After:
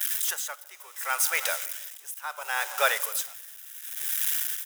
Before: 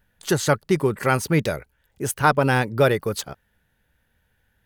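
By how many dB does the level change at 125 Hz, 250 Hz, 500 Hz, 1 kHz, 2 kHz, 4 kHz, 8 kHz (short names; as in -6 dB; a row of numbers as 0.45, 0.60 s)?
under -40 dB, under -40 dB, -15.5 dB, -9.0 dB, -3.5 dB, -0.5 dB, +3.5 dB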